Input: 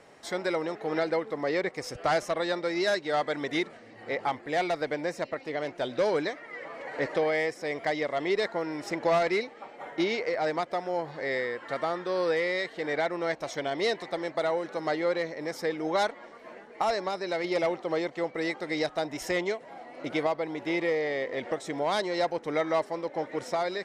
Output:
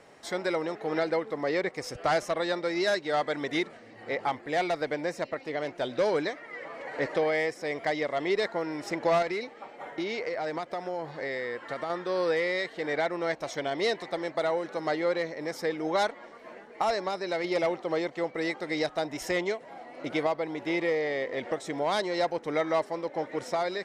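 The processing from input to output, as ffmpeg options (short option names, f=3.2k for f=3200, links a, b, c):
-filter_complex "[0:a]asettb=1/sr,asplit=3[a][b][c];[a]atrim=end=9.224[d];[b]atrim=start=9.22:end=11.9,asetpts=PTS-STARTPTS,afade=t=in:d=0.004:c=qsin,afade=t=out:st=2.676:d=0.004:c=qsin,acompressor=threshold=-28dB:ratio=6:attack=3.2:release=140:knee=1:detection=peak[e];[c]atrim=start=11.896[f];[d][e]acrossfade=d=0.004:c1=hsin:c2=qsin[g];[g][f]acrossfade=d=0.004:c1=qsin:c2=hsin"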